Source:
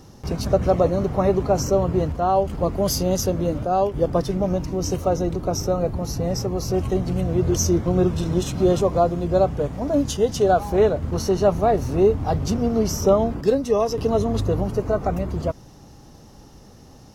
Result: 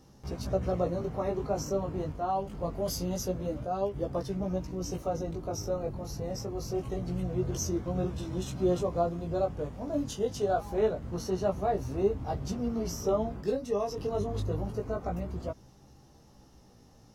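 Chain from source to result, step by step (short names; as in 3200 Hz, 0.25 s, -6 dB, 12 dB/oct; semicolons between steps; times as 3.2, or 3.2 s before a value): chorus 0.25 Hz, delay 15 ms, depth 5.2 ms; gain -8 dB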